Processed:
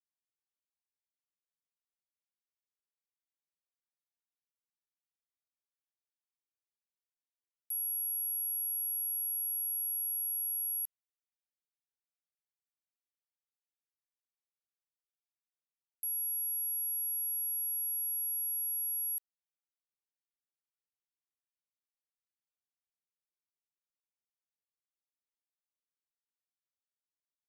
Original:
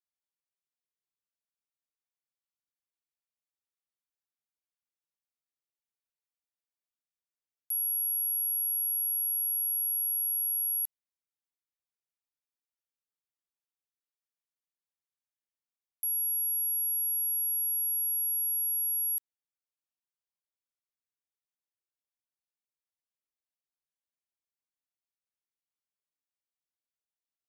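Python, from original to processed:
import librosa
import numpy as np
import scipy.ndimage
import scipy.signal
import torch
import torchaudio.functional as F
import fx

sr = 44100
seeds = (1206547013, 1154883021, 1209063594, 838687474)

y = fx.leveller(x, sr, passes=3)
y = F.gain(torch.from_numpy(y), -6.5).numpy()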